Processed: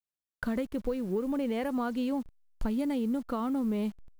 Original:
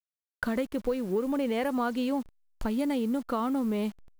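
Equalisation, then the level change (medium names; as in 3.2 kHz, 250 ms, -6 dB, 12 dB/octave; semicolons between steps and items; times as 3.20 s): bass shelf 230 Hz +8.5 dB; -5.0 dB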